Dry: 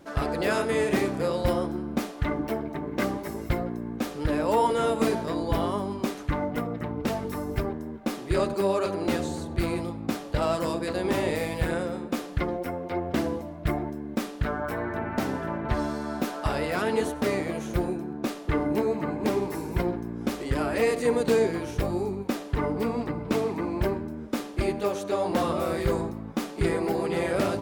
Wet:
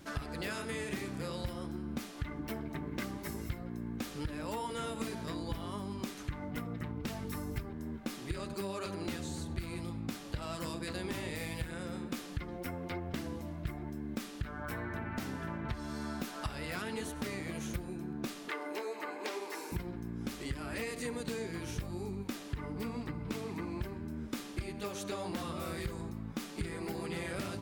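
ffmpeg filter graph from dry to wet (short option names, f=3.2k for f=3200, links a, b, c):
-filter_complex "[0:a]asettb=1/sr,asplit=3[a][b][c];[a]atrim=end=18.484[d];[b]atrim=start=18.48:end=19.72,asetpts=PTS-STARTPTS,afade=t=in:d=0.004:c=qsin,afade=t=out:st=1.236:d=0.004:c=qsin,acrossover=split=6700[e][f];[f]acompressor=threshold=-54dB:ratio=4:attack=1:release=60[g];[e][g]amix=inputs=2:normalize=0,highpass=f=410:w=0.5412,highpass=f=410:w=1.3066[h];[c]atrim=start=19.716[i];[d][h]acrossfade=d=0.004:c1=hsin:c2=qsin[j];[j][i]acrossfade=d=0.004:c1=qsin:c2=hsin,equalizer=f=570:w=0.59:g=-11.5,acompressor=threshold=-39dB:ratio=6,volume=3.5dB"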